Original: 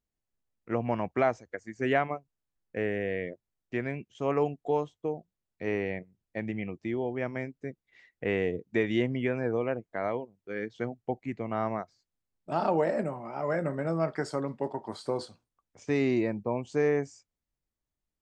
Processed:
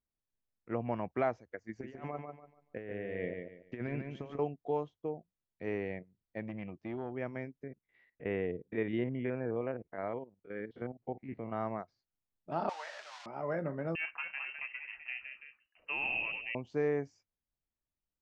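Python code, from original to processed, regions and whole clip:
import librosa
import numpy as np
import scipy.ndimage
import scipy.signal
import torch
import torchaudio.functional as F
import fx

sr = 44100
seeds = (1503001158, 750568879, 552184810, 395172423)

y = fx.chain(x, sr, fx.over_compress(threshold_db=-34.0, ratio=-0.5),
    fx.echo_feedback(ms=144, feedback_pct=29, wet_db=-5.5), at=(1.69, 4.39))
y = fx.chain(y, sr, fx.dynamic_eq(hz=460.0, q=3.7, threshold_db=-48.0, ratio=4.0, max_db=-6),
    fx.transformer_sat(knee_hz=410.0), at=(6.42, 7.12))
y = fx.chain(y, sr, fx.spec_steps(hold_ms=50),
    fx.lowpass(hz=3100.0, slope=12), at=(7.63, 11.52))
y = fx.chain(y, sr, fx.crossing_spikes(level_db=-22.0),
    fx.highpass(hz=950.0, slope=24),
    fx.doubler(ms=22.0, db=-14.0), at=(12.69, 13.26))
y = fx.chain(y, sr, fx.peak_eq(hz=500.0, db=-6.5, octaves=0.7),
    fx.echo_pitch(ms=228, semitones=1, count=2, db_per_echo=-6.0),
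    fx.freq_invert(carrier_hz=2900), at=(13.95, 16.55))
y = scipy.signal.sosfilt(scipy.signal.butter(4, 5900.0, 'lowpass', fs=sr, output='sos'), y)
y = fx.high_shelf(y, sr, hz=4100.0, db=-10.0)
y = y * librosa.db_to_amplitude(-5.5)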